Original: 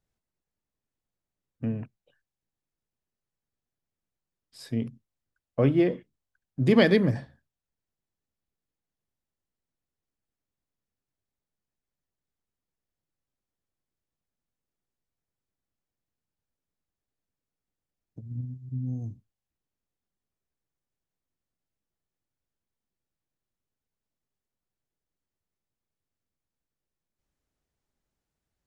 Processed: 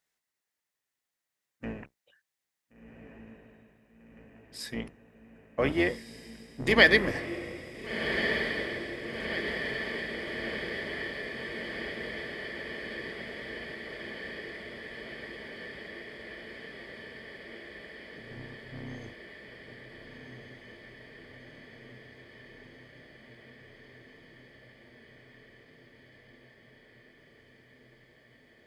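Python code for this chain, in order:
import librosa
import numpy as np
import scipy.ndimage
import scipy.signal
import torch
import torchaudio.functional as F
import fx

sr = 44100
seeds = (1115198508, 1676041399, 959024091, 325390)

y = fx.octave_divider(x, sr, octaves=2, level_db=3.0)
y = fx.highpass(y, sr, hz=1400.0, slope=6)
y = fx.peak_eq(y, sr, hz=1900.0, db=7.5, octaves=0.29)
y = fx.echo_diffused(y, sr, ms=1457, feedback_pct=78, wet_db=-7)
y = y * 10.0 ** (6.5 / 20.0)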